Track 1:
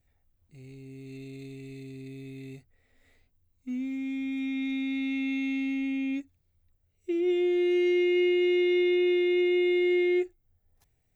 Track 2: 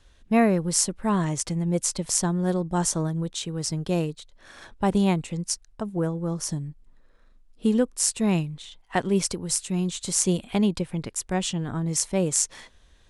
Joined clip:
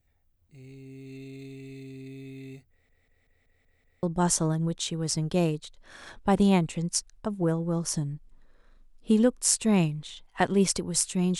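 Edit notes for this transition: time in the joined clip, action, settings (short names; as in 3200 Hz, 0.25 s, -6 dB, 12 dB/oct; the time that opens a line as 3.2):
track 1
2.7 stutter in place 0.19 s, 7 plays
4.03 switch to track 2 from 2.58 s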